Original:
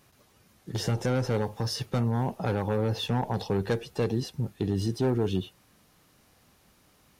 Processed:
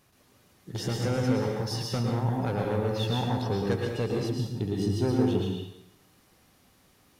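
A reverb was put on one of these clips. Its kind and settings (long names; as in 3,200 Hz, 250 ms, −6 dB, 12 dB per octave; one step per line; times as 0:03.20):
dense smooth reverb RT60 0.81 s, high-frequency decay 0.95×, pre-delay 100 ms, DRR −0.5 dB
level −3 dB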